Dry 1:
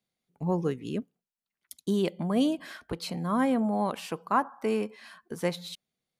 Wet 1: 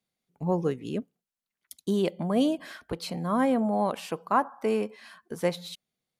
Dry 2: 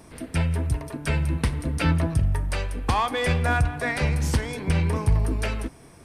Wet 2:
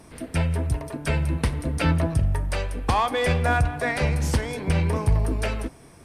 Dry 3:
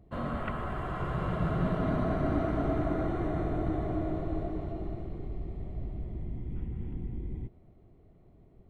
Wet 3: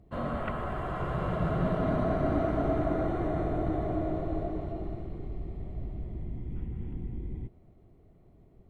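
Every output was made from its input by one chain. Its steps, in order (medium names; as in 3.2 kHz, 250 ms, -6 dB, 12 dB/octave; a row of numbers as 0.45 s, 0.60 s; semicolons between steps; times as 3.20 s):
dynamic bell 600 Hz, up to +4 dB, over -43 dBFS, Q 1.5; AC-3 96 kbps 48 kHz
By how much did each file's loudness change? +1.5 LU, +0.5 LU, +1.0 LU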